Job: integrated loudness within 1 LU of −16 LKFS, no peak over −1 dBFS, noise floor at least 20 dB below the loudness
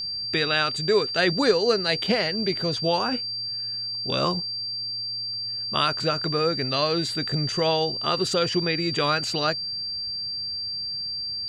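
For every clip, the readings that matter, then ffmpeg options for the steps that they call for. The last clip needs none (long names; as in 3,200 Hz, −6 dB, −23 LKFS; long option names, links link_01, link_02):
interfering tone 4,700 Hz; level of the tone −28 dBFS; integrated loudness −24.0 LKFS; sample peak −8.0 dBFS; target loudness −16.0 LKFS
→ -af "bandreject=frequency=4700:width=30"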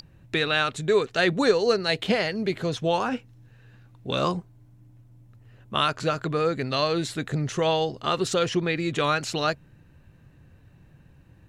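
interfering tone none found; integrated loudness −25.0 LKFS; sample peak −8.0 dBFS; target loudness −16.0 LKFS
→ -af "volume=9dB,alimiter=limit=-1dB:level=0:latency=1"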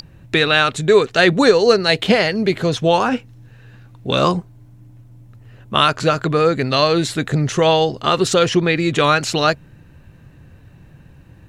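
integrated loudness −16.0 LKFS; sample peak −1.0 dBFS; background noise floor −46 dBFS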